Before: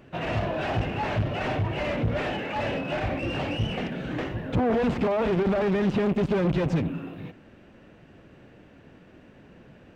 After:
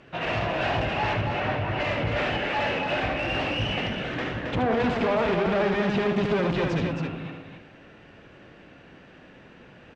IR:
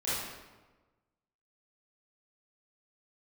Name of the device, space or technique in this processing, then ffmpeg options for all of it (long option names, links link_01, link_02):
ducked reverb: -filter_complex "[0:a]asettb=1/sr,asplit=3[link_01][link_02][link_03];[link_01]atrim=end=1.134[link_04];[link_02]atrim=start=1.13:end=1.8,asetpts=PTS-STARTPTS,afade=type=in:duration=0.004:curve=qsin,afade=type=out:start_time=0.666:duration=0.004:curve=qsin,aemphasis=mode=reproduction:type=75kf[link_05];[link_03]atrim=start=1.796[link_06];[link_04][link_05]acrossfade=duration=0.004:curve1=hsin:curve2=qsin[link_07];[link_07][link_06]acrossfade=duration=0.004:curve1=qsin:curve2=hsin,lowpass=5600,tiltshelf=frequency=670:gain=-4.5,asplit=3[link_08][link_09][link_10];[1:a]atrim=start_sample=2205[link_11];[link_09][link_11]afir=irnorm=-1:irlink=0[link_12];[link_10]apad=whole_len=438974[link_13];[link_12][link_13]sidechaincompress=threshold=-34dB:ratio=8:attack=16:release=132,volume=-14dB[link_14];[link_08][link_14]amix=inputs=2:normalize=0,aecho=1:1:75|270:0.473|0.531"